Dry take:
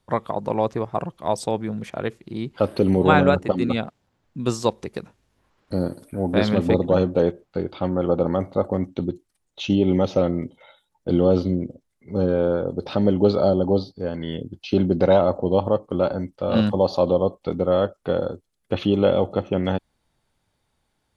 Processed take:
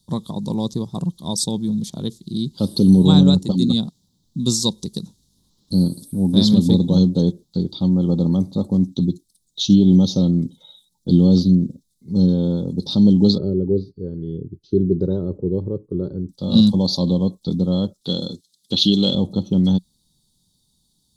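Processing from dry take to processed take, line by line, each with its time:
13.38–16.29 EQ curve 120 Hz 0 dB, 230 Hz -12 dB, 400 Hz +8 dB, 680 Hz -15 dB, 960 Hz -17 dB, 1500 Hz -2 dB, 2600 Hz -26 dB, 4100 Hz -28 dB, 9900 Hz -22 dB
18.01–19.15 weighting filter D
whole clip: EQ curve 110 Hz 0 dB, 180 Hz +9 dB, 660 Hz -16 dB, 960 Hz -10 dB, 1500 Hz -24 dB, 2500 Hz -23 dB, 3700 Hz +11 dB; gain +2.5 dB

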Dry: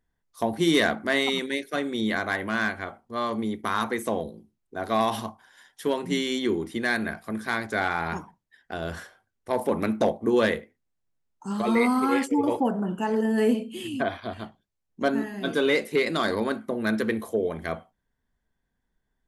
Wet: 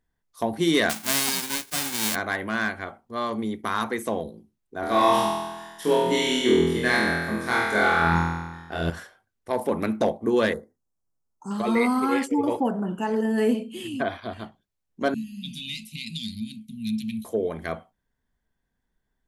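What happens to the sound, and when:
0.89–2.14 spectral whitening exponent 0.1
4.8–8.9 flutter echo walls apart 4.1 m, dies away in 1.2 s
10.53–11.51 Chebyshev band-stop 1200–5700 Hz
15.14–17.25 Chebyshev band-stop 230–2500 Hz, order 5

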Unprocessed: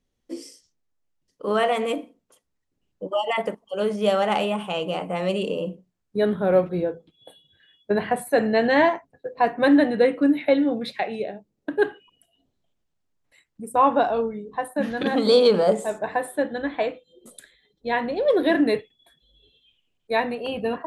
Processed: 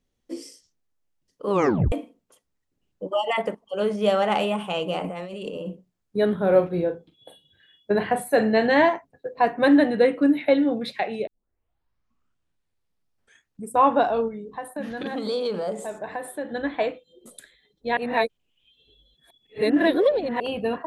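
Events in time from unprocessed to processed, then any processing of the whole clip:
1.5 tape stop 0.42 s
3.39–4.39 high shelf 6900 Hz -5 dB
5.04–5.7 negative-ratio compressor -33 dBFS
6.39–8.73 doubler 41 ms -10 dB
11.27 tape start 2.46 s
14.28–16.49 compressor 2:1, threshold -32 dBFS
17.97–20.4 reverse

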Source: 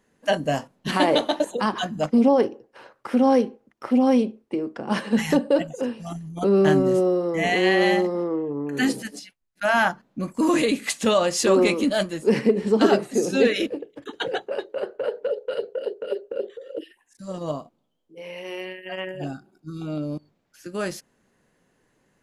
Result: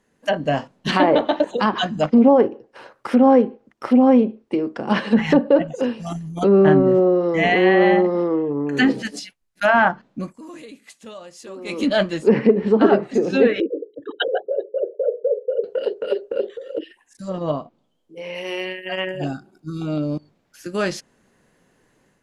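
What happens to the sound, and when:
10.06–11.98 dip -24 dB, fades 0.34 s
13.6–15.64 formant sharpening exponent 3
16.77–18.35 treble ducked by the level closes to 2900 Hz, closed at -29 dBFS
whole clip: treble ducked by the level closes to 1600 Hz, closed at -16.5 dBFS; dynamic EQ 3600 Hz, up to +3 dB, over -42 dBFS, Q 0.73; AGC gain up to 5.5 dB

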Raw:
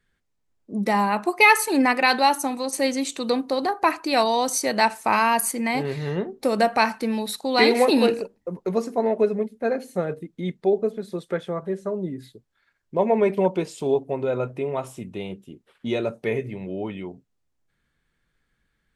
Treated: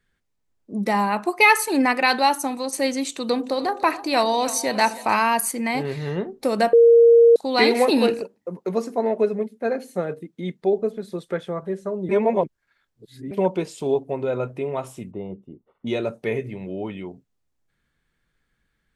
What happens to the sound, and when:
3.13–5.14 split-band echo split 650 Hz, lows 98 ms, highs 0.304 s, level -14 dB
6.73–7.36 bleep 466 Hz -8.5 dBFS
8.22–10.62 HPF 140 Hz
12.09–13.31 reverse
15.11–15.87 polynomial smoothing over 65 samples

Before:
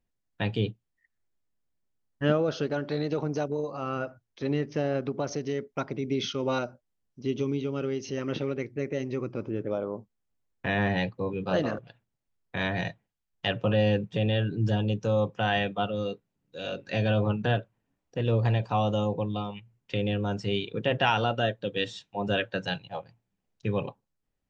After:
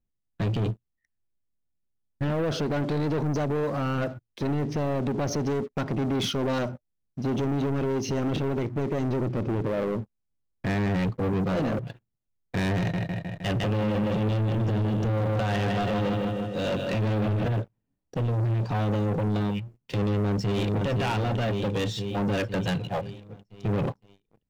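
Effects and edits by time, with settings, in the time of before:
12.78–17.53 analogue delay 0.155 s, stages 4096, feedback 58%, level -7 dB
20.06–20.85 echo throw 0.51 s, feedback 55%, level -6.5 dB
whole clip: low shelf 420 Hz +11 dB; limiter -17.5 dBFS; sample leveller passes 3; gain -4.5 dB

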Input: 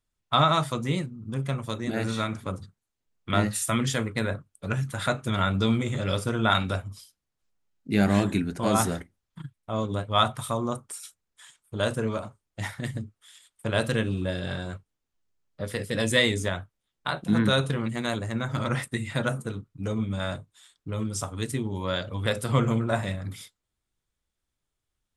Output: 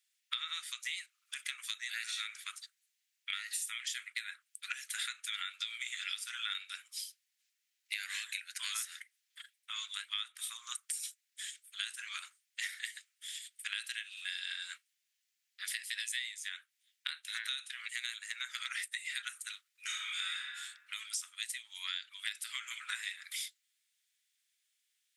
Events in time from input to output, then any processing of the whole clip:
19.84–20.38 reverb throw, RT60 0.93 s, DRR -8 dB
whole clip: steep high-pass 1800 Hz 36 dB/oct; compressor 12:1, threshold -44 dBFS; gain +8.5 dB

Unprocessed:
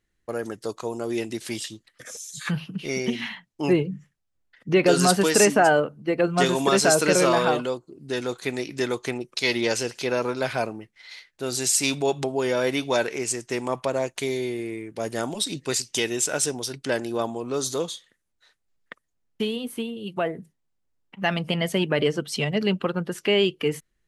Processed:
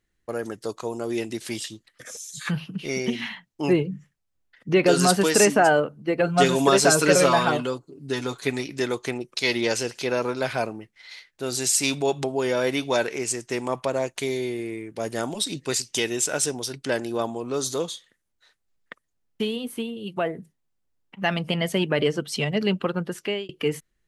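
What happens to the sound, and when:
6.2–8.67 comb 7.1 ms
22.96–23.49 fade out equal-power

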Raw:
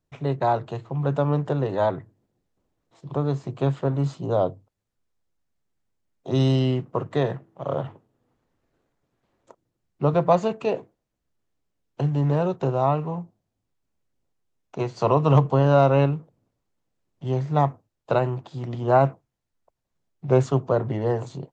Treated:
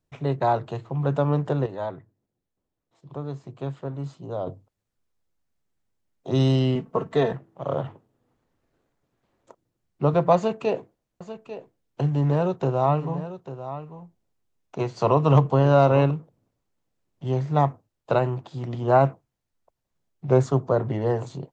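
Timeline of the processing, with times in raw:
1.66–4.47 gain -8.5 dB
6.75–7.33 comb 4.5 ms, depth 61%
10.36–16.11 echo 0.845 s -12.5 dB
20.33–20.78 bell 2800 Hz -7.5 dB 0.54 oct

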